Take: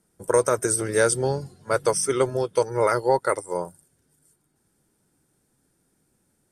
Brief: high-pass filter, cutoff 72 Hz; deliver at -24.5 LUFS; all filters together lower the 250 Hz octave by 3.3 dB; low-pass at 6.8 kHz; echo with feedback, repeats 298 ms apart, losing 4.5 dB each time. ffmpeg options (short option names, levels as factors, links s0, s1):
-af "highpass=72,lowpass=6800,equalizer=f=250:t=o:g=-6,aecho=1:1:298|596|894|1192|1490|1788|2086|2384|2682:0.596|0.357|0.214|0.129|0.0772|0.0463|0.0278|0.0167|0.01,volume=0.891"